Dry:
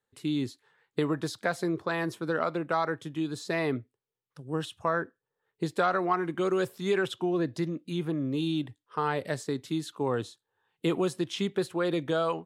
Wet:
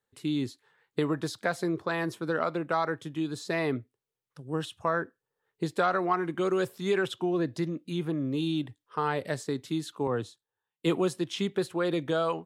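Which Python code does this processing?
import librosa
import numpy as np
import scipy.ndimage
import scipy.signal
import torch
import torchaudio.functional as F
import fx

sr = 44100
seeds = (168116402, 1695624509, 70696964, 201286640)

y = fx.band_widen(x, sr, depth_pct=70, at=(10.07, 11.31))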